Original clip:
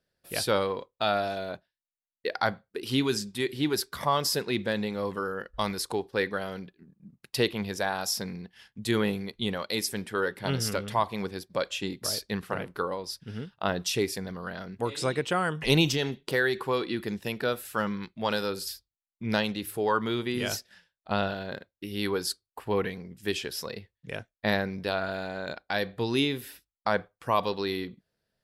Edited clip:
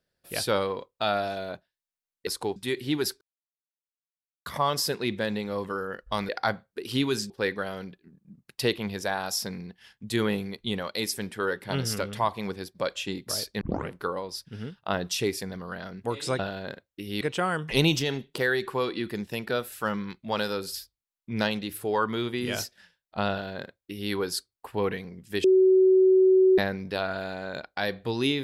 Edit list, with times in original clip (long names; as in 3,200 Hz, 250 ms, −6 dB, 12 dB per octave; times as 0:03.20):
0:02.27–0:03.28: swap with 0:05.76–0:06.05
0:03.93: splice in silence 1.25 s
0:12.36: tape start 0.28 s
0:21.23–0:22.05: duplicate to 0:15.14
0:23.37–0:24.51: beep over 376 Hz −15 dBFS